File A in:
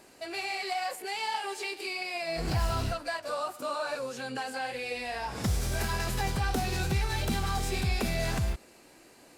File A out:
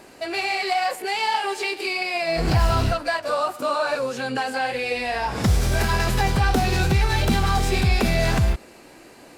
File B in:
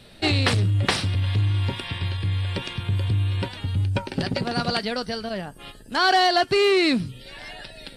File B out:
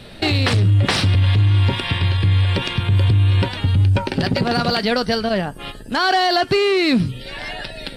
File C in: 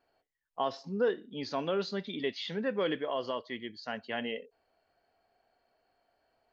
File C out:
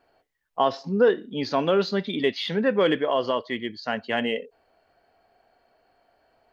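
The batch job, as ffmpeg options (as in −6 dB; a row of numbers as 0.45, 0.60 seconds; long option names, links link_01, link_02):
-filter_complex "[0:a]asplit=2[link_01][link_02];[link_02]adynamicsmooth=sensitivity=5.5:basefreq=5200,volume=-3dB[link_03];[link_01][link_03]amix=inputs=2:normalize=0,alimiter=level_in=13.5dB:limit=-1dB:release=50:level=0:latency=1,volume=-8dB"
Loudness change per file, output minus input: +9.5, +5.5, +10.0 LU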